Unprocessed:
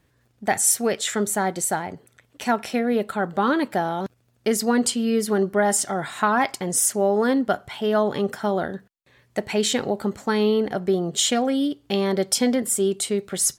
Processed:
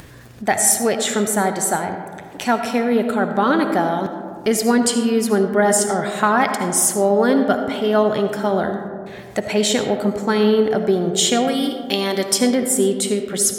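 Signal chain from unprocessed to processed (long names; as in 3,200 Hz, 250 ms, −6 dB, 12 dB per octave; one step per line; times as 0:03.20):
0:11.47–0:12.25: spectral tilt +2.5 dB per octave
upward compression, threshold −29 dBFS
comb and all-pass reverb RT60 2.1 s, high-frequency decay 0.3×, pre-delay 35 ms, DRR 6.5 dB
level +3.5 dB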